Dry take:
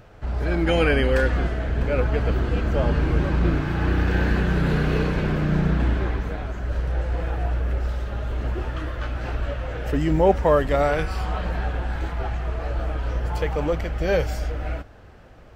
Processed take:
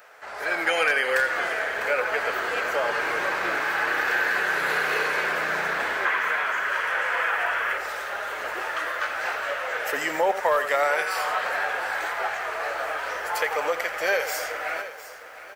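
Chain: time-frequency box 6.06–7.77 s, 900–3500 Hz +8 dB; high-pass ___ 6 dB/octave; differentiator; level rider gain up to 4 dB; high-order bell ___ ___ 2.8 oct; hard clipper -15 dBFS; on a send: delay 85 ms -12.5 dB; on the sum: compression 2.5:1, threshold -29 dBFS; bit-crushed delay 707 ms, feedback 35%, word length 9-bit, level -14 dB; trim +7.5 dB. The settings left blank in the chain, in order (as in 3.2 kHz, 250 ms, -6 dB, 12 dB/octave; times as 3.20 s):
190 Hz, 930 Hz, +12.5 dB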